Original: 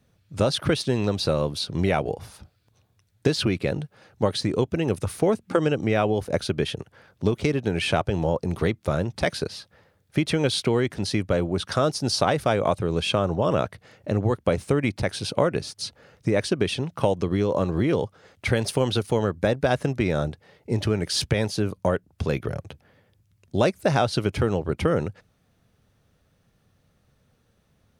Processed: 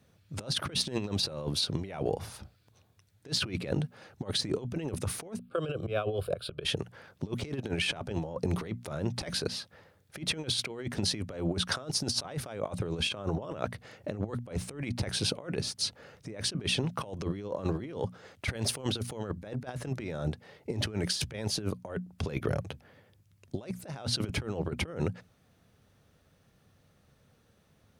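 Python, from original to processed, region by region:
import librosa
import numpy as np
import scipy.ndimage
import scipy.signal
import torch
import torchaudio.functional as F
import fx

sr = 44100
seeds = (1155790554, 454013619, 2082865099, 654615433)

y = fx.chain(x, sr, fx.auto_swell(attack_ms=188.0),
    fx.fixed_phaser(hz=1300.0, stages=8), at=(5.39, 6.65))
y = fx.highpass(y, sr, hz=52.0, slope=6)
y = fx.hum_notches(y, sr, base_hz=60, count=4)
y = fx.over_compress(y, sr, threshold_db=-28.0, ratio=-0.5)
y = F.gain(torch.from_numpy(y), -4.0).numpy()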